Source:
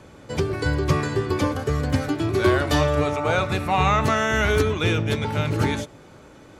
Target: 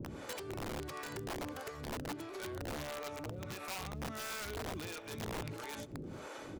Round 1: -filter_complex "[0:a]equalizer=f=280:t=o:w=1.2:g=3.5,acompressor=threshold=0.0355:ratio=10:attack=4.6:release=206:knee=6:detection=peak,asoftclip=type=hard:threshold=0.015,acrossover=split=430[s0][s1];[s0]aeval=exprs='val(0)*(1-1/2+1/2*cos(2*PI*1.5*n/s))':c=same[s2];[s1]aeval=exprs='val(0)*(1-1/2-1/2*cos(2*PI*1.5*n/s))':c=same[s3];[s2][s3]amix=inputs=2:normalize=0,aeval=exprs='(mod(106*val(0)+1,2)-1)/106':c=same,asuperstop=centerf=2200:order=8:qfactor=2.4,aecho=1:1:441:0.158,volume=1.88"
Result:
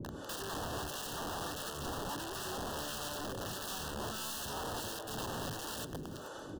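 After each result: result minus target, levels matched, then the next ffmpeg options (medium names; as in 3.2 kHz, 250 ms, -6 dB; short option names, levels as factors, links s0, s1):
compression: peak gain reduction -8.5 dB; echo-to-direct +10 dB; 2 kHz band -2.5 dB
-filter_complex "[0:a]equalizer=f=280:t=o:w=1.2:g=3.5,acompressor=threshold=0.0119:ratio=10:attack=4.6:release=206:knee=6:detection=peak,asoftclip=type=hard:threshold=0.015,acrossover=split=430[s0][s1];[s0]aeval=exprs='val(0)*(1-1/2+1/2*cos(2*PI*1.5*n/s))':c=same[s2];[s1]aeval=exprs='val(0)*(1-1/2-1/2*cos(2*PI*1.5*n/s))':c=same[s3];[s2][s3]amix=inputs=2:normalize=0,aeval=exprs='(mod(106*val(0)+1,2)-1)/106':c=same,asuperstop=centerf=2200:order=8:qfactor=2.4,aecho=1:1:441:0.158,volume=1.88"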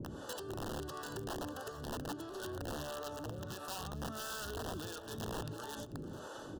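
echo-to-direct +10 dB; 2 kHz band -2.5 dB
-filter_complex "[0:a]equalizer=f=280:t=o:w=1.2:g=3.5,acompressor=threshold=0.0119:ratio=10:attack=4.6:release=206:knee=6:detection=peak,asoftclip=type=hard:threshold=0.015,acrossover=split=430[s0][s1];[s0]aeval=exprs='val(0)*(1-1/2+1/2*cos(2*PI*1.5*n/s))':c=same[s2];[s1]aeval=exprs='val(0)*(1-1/2-1/2*cos(2*PI*1.5*n/s))':c=same[s3];[s2][s3]amix=inputs=2:normalize=0,aeval=exprs='(mod(106*val(0)+1,2)-1)/106':c=same,asuperstop=centerf=2200:order=8:qfactor=2.4,aecho=1:1:441:0.0501,volume=1.88"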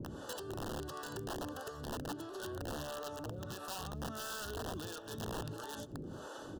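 2 kHz band -2.5 dB
-filter_complex "[0:a]equalizer=f=280:t=o:w=1.2:g=3.5,acompressor=threshold=0.0119:ratio=10:attack=4.6:release=206:knee=6:detection=peak,asoftclip=type=hard:threshold=0.015,acrossover=split=430[s0][s1];[s0]aeval=exprs='val(0)*(1-1/2+1/2*cos(2*PI*1.5*n/s))':c=same[s2];[s1]aeval=exprs='val(0)*(1-1/2-1/2*cos(2*PI*1.5*n/s))':c=same[s3];[s2][s3]amix=inputs=2:normalize=0,aeval=exprs='(mod(106*val(0)+1,2)-1)/106':c=same,aecho=1:1:441:0.0501,volume=1.88"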